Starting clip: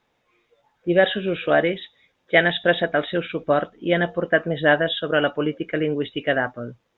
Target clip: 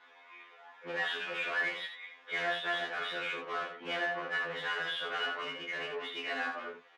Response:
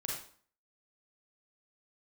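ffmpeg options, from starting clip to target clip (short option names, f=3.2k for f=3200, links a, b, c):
-filter_complex "[0:a]afftfilt=real='re*lt(hypot(re,im),0.794)':imag='im*lt(hypot(re,im),0.794)':win_size=1024:overlap=0.75,aecho=1:1:7.5:0.67,asplit=2[a][b];[b]acompressor=threshold=-35dB:ratio=6,volume=0dB[c];[a][c]amix=inputs=2:normalize=0,asoftclip=type=tanh:threshold=-17.5dB,asplit=2[d][e];[e]highpass=f=720:p=1,volume=25dB,asoftclip=type=tanh:threshold=-17.5dB[f];[d][f]amix=inputs=2:normalize=0,lowpass=f=2.1k:p=1,volume=-6dB,bandpass=f=1.8k:t=q:w=0.72:csg=0,aecho=1:1:26|78:0.562|0.473,afftfilt=real='re*2*eq(mod(b,4),0)':imag='im*2*eq(mod(b,4),0)':win_size=2048:overlap=0.75,volume=-7.5dB"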